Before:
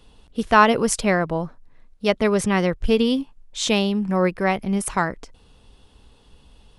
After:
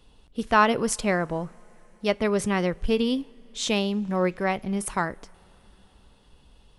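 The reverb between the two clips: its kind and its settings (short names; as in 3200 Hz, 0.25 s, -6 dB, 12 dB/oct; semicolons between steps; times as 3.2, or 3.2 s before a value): two-slope reverb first 0.26 s, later 4.7 s, from -21 dB, DRR 19 dB; gain -4.5 dB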